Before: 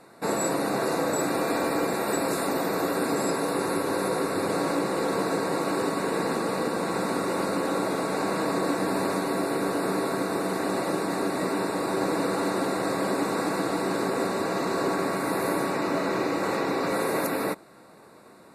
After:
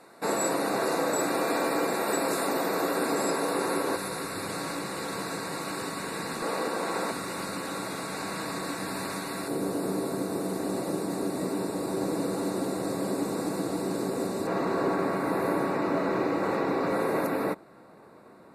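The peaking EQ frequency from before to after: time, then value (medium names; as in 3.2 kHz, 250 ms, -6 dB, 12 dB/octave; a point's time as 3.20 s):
peaking EQ -10.5 dB 2.8 oct
63 Hz
from 3.96 s 440 Hz
from 6.42 s 110 Hz
from 7.11 s 450 Hz
from 9.48 s 1.7 kHz
from 14.47 s 8.1 kHz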